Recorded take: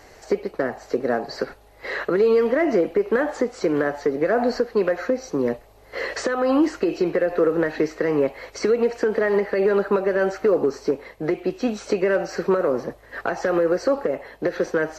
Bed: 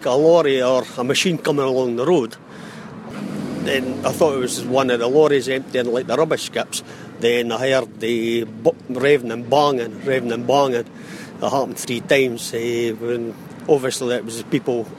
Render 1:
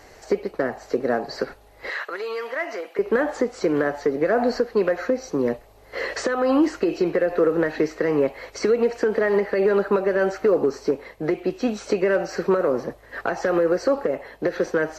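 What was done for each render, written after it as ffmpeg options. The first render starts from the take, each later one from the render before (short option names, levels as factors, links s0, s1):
-filter_complex "[0:a]asettb=1/sr,asplit=3[s0][s1][s2];[s0]atrim=end=1.904[s3];[s1]atrim=start=1.9:end=2.99,asetpts=PTS-STARTPTS,afade=t=in:d=0.004:c=qsin,afade=t=out:st=1.086:d=0.004:c=qsin,highpass=930[s4];[s2]atrim=start=2.986[s5];[s3][s4]acrossfade=d=0.004:c1=hsin:c2=qsin[s6];[s6][s5]acrossfade=d=0.004:c1=qsin:c2=hsin"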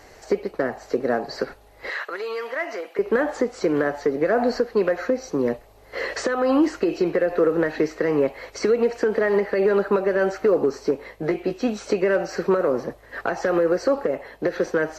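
-filter_complex "[0:a]asettb=1/sr,asplit=3[s0][s1][s2];[s0]atrim=end=10.994[s3];[s1]atrim=start=10.99:end=11.54,asetpts=PTS-STARTPTS,afade=t=in:d=0.004:c=qsin,afade=t=out:st=0.546:d=0.004:c=qsin,asplit=2[s4][s5];[s5]adelay=18,volume=0.447[s6];[s4][s6]amix=inputs=2:normalize=0,atrim=end_sample=24255[s7];[s2]atrim=start=11.536[s8];[s3][s7]acrossfade=d=0.004:c1=hsin:c2=qsin[s9];[s9][s8]acrossfade=d=0.004:c1=qsin:c2=hsin"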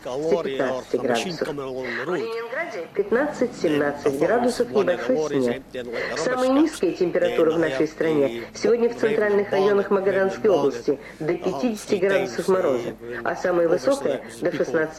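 -filter_complex "[1:a]volume=0.266[s0];[0:a][s0]amix=inputs=2:normalize=0"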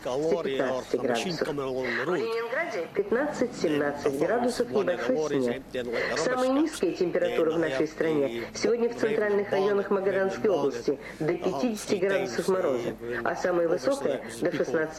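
-af "acompressor=threshold=0.0631:ratio=2.5"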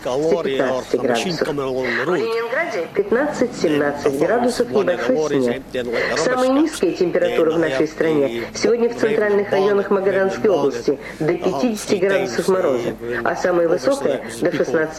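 -af "volume=2.66"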